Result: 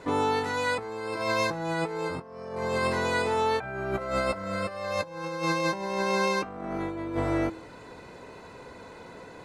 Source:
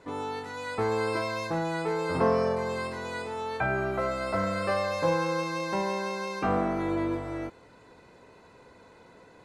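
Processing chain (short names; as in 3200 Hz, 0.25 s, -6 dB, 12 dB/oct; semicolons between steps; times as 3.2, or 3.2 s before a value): de-hum 108.1 Hz, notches 3; negative-ratio compressor -33 dBFS, ratio -0.5; gain +4.5 dB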